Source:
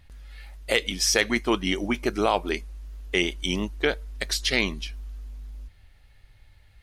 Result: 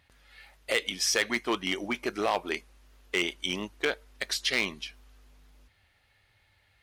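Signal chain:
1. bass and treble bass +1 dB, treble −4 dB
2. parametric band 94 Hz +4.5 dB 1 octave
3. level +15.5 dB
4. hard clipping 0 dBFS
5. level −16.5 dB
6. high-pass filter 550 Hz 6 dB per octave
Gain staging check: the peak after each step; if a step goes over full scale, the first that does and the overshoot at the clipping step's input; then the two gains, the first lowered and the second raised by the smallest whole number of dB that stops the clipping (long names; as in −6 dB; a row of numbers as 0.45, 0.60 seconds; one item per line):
−8.0, −8.0, +7.5, 0.0, −16.5, −12.0 dBFS
step 3, 7.5 dB
step 3 +7.5 dB, step 5 −8.5 dB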